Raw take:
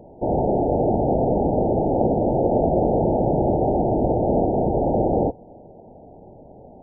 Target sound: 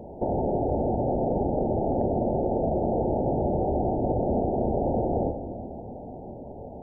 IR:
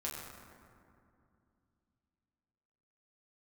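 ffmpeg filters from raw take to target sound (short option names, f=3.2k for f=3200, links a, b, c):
-filter_complex "[0:a]acompressor=threshold=-30dB:ratio=3,asplit=2[a][b];[1:a]atrim=start_sample=2205[c];[b][c]afir=irnorm=-1:irlink=0,volume=-3.5dB[d];[a][d]amix=inputs=2:normalize=0"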